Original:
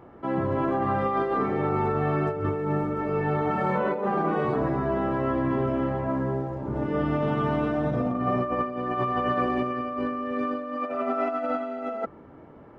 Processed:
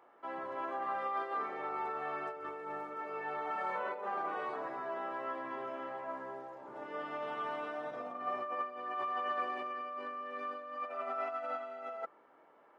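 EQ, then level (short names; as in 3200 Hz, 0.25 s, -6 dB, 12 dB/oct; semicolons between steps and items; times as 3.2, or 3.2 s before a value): HPF 710 Hz 12 dB/oct; -7.5 dB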